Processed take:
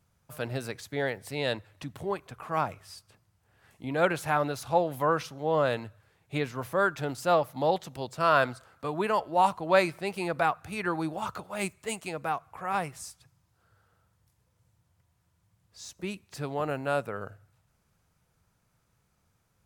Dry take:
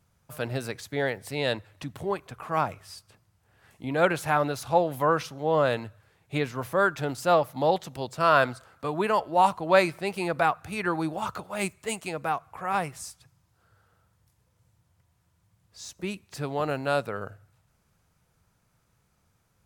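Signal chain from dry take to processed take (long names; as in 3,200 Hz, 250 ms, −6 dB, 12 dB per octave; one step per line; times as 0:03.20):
0:16.54–0:17.20: parametric band 4,200 Hz −8 dB 0.57 octaves
level −2.5 dB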